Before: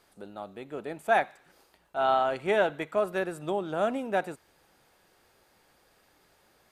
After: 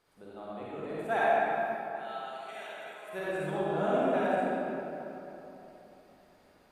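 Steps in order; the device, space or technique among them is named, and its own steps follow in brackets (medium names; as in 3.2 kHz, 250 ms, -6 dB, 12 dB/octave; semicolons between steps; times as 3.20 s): 1.19–3.13 s: differentiator; swimming-pool hall (reverberation RT60 3.4 s, pre-delay 42 ms, DRR -9 dB; treble shelf 4.8 kHz -5 dB); trim -8.5 dB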